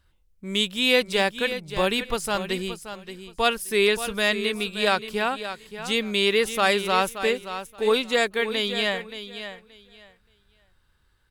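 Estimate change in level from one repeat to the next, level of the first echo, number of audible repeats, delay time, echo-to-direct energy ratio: −14.5 dB, −11.0 dB, 2, 576 ms, −11.0 dB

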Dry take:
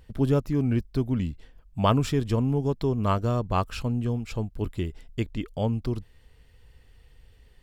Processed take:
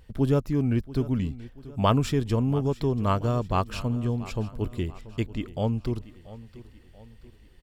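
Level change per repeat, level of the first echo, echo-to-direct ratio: −7.0 dB, −17.5 dB, −16.5 dB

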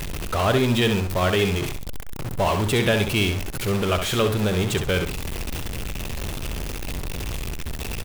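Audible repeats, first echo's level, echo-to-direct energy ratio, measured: 2, −7.5 dB, −7.0 dB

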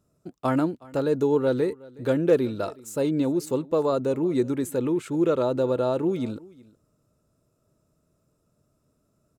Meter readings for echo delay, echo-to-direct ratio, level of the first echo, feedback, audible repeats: 368 ms, −22.5 dB, −22.5 dB, repeats not evenly spaced, 1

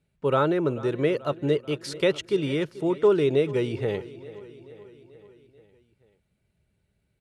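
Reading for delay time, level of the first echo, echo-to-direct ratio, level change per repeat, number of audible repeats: 436 ms, −18.0 dB, −16.0 dB, −4.5 dB, 4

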